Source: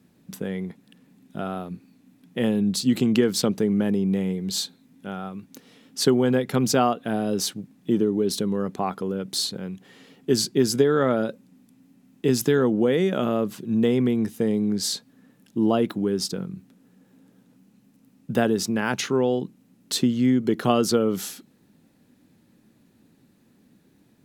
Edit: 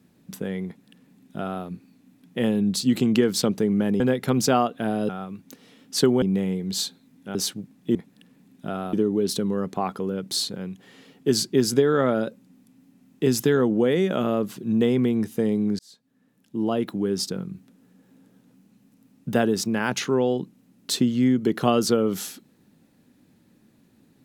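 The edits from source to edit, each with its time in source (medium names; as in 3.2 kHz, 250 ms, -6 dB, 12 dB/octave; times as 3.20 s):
0.66–1.64 s: copy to 7.95 s
4.00–5.13 s: swap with 6.26–7.35 s
14.81–16.19 s: fade in linear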